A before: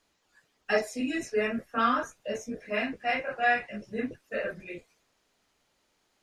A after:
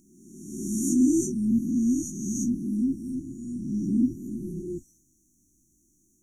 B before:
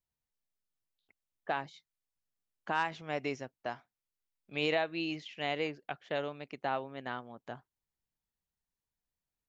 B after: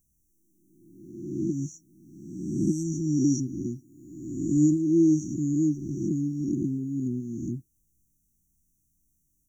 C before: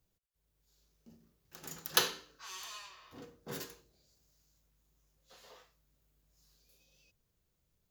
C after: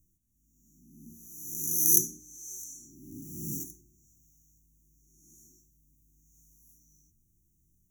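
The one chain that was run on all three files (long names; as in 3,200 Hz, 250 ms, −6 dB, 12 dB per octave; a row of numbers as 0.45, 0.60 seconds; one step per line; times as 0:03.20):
peak hold with a rise ahead of every peak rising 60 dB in 1.24 s
linear-phase brick-wall band-stop 370–5,600 Hz
loudness normalisation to −27 LKFS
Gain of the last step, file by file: +9.0, +17.5, +6.5 decibels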